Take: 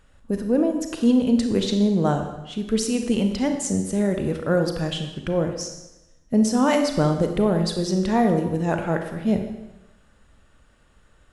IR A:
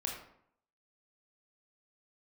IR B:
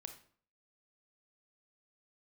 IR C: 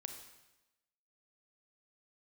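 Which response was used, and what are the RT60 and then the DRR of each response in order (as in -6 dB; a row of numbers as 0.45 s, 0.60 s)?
C; 0.70 s, 0.50 s, 1.0 s; -0.5 dB, 6.0 dB, 5.0 dB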